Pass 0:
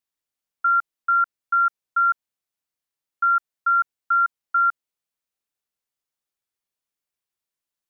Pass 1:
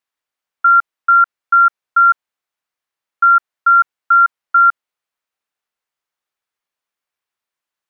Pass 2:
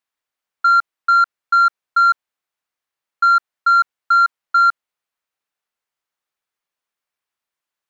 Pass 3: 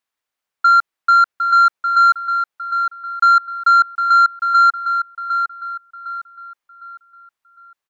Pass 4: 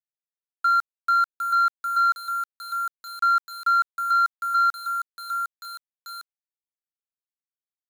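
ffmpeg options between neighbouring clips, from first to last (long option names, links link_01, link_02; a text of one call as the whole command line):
ffmpeg -i in.wav -af "equalizer=frequency=1300:width=0.36:gain=11.5,volume=-2.5dB" out.wav
ffmpeg -i in.wav -af "acontrast=43,volume=-6.5dB" out.wav
ffmpeg -i in.wav -filter_complex "[0:a]asplit=2[link_01][link_02];[link_02]adelay=757,lowpass=frequency=2800:poles=1,volume=-6.5dB,asplit=2[link_03][link_04];[link_04]adelay=757,lowpass=frequency=2800:poles=1,volume=0.41,asplit=2[link_05][link_06];[link_06]adelay=757,lowpass=frequency=2800:poles=1,volume=0.41,asplit=2[link_07][link_08];[link_08]adelay=757,lowpass=frequency=2800:poles=1,volume=0.41,asplit=2[link_09][link_10];[link_10]adelay=757,lowpass=frequency=2800:poles=1,volume=0.41[link_11];[link_01][link_03][link_05][link_07][link_09][link_11]amix=inputs=6:normalize=0,volume=1.5dB" out.wav
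ffmpeg -i in.wav -af "aeval=exprs='val(0)*gte(abs(val(0)),0.0562)':channel_layout=same,volume=-8.5dB" out.wav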